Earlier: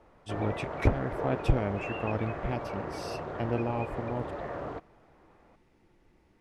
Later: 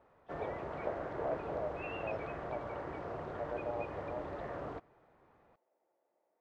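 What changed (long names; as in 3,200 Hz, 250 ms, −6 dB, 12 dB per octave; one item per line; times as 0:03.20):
speech: add four-pole ladder band-pass 670 Hz, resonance 65%
background −5.0 dB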